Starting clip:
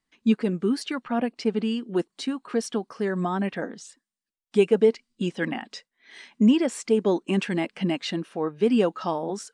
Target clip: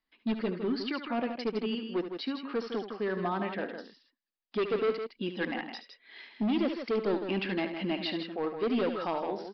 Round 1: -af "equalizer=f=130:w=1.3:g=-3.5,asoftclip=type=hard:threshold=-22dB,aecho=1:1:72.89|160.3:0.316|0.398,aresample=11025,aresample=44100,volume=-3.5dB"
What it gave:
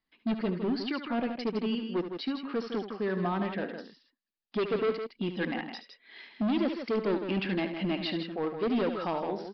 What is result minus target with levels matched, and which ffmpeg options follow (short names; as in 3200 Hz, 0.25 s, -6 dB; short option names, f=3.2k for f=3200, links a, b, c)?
125 Hz band +3.0 dB
-af "equalizer=f=130:w=1.3:g=-13,asoftclip=type=hard:threshold=-22dB,aecho=1:1:72.89|160.3:0.316|0.398,aresample=11025,aresample=44100,volume=-3.5dB"